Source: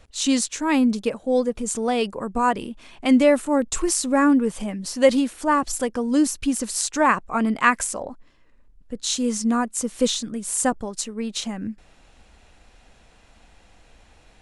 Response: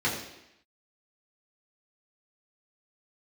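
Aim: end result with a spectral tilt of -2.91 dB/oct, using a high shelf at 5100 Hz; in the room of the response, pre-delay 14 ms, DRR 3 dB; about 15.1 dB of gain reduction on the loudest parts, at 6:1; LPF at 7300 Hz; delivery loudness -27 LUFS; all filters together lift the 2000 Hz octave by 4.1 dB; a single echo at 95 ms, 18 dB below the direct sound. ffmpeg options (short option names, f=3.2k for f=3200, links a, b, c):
-filter_complex "[0:a]lowpass=7.3k,equalizer=f=2k:t=o:g=4.5,highshelf=f=5.1k:g=5,acompressor=threshold=-27dB:ratio=6,aecho=1:1:95:0.126,asplit=2[a][b];[1:a]atrim=start_sample=2205,adelay=14[c];[b][c]afir=irnorm=-1:irlink=0,volume=-14.5dB[d];[a][d]amix=inputs=2:normalize=0,volume=1.5dB"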